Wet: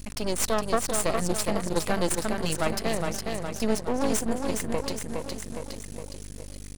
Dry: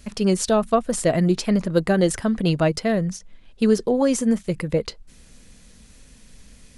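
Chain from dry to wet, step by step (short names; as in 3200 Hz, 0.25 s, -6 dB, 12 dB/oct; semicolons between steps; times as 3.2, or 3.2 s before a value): HPF 180 Hz 6 dB/oct; high shelf 5900 Hz +11.5 dB; feedback echo 0.413 s, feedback 53%, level -5 dB; in parallel at -1.5 dB: compressor, threshold -29 dBFS, peak gain reduction 15.5 dB; on the sum: hum 50 Hz, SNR 11 dB; half-wave rectifier; gain -5 dB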